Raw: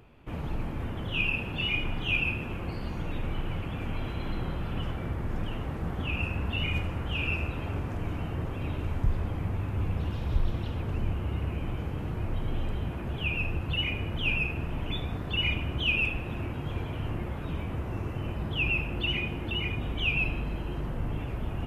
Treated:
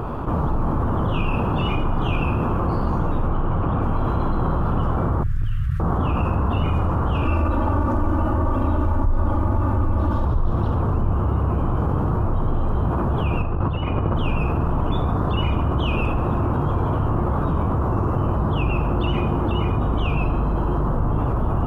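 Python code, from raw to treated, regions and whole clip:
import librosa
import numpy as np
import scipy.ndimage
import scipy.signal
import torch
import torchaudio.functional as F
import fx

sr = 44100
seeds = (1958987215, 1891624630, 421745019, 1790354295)

y = fx.chain(x, sr, fx.lowpass(hz=3700.0, slope=6),
    fx.doppler_dist(depth_ms=0.19), at=(3.28, 3.83))
y = fx.chain(y, sr, fx.ellip_bandstop(low_hz=130.0, high_hz=1800.0, order=3, stop_db=40),
    fx.band_shelf(hz=690.0, db=-11.5, octaves=1.0),
    fx.clip_hard(threshold_db=-26.0), at=(5.23, 5.8))
y = fx.chain(y, sr, fx.comb(ms=3.4, depth=0.94),
    fx.room_flutter(wall_m=6.5, rt60_s=0.21), at=(7.25, 10.25))
y = fx.chain(y, sr, fx.lowpass(hz=3700.0, slope=12),
    fx.over_compress(threshold_db=-34.0, ratio=-0.5), at=(13.42, 14.15))
y = fx.high_shelf_res(y, sr, hz=1600.0, db=-11.0, q=3.0)
y = fx.env_flatten(y, sr, amount_pct=70)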